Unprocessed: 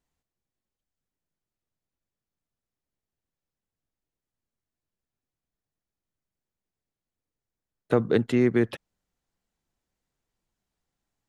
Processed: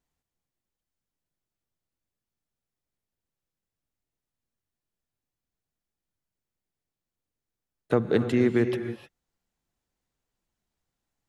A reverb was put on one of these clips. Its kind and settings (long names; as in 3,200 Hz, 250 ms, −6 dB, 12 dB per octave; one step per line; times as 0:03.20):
reverb whose tail is shaped and stops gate 330 ms rising, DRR 8.5 dB
level −1 dB